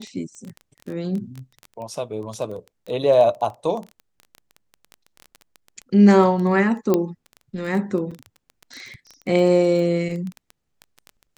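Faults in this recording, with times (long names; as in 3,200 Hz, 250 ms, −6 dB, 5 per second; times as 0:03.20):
surface crackle 14 per second −27 dBFS
0:06.94: click −7 dBFS
0:08.11–0:08.12: drop-out 5.6 ms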